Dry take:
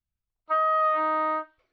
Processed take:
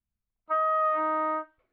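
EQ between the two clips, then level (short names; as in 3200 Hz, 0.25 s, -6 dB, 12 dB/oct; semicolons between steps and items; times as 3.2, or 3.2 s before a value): air absorption 430 m; bell 220 Hz +9.5 dB 0.29 oct; 0.0 dB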